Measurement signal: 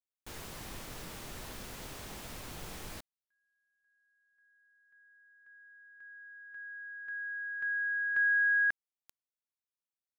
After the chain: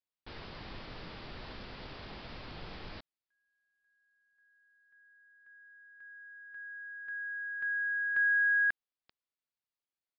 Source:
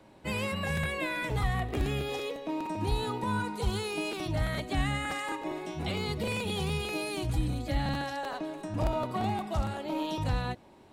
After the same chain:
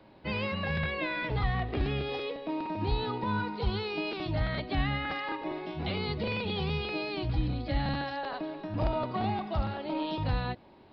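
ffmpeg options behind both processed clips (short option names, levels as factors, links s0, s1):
-af "aresample=11025,aresample=44100"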